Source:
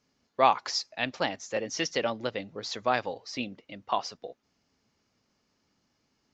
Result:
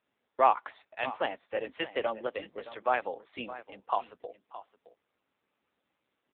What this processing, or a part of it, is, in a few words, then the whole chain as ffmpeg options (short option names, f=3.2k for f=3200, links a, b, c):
satellite phone: -filter_complex "[0:a]highpass=f=150:w=0.5412,highpass=f=150:w=1.3066,acrossover=split=5600[a][b];[b]acompressor=threshold=-49dB:ratio=4:attack=1:release=60[c];[a][c]amix=inputs=2:normalize=0,highpass=330,lowpass=3k,aecho=1:1:618:0.178" -ar 8000 -c:a libopencore_amrnb -b:a 6700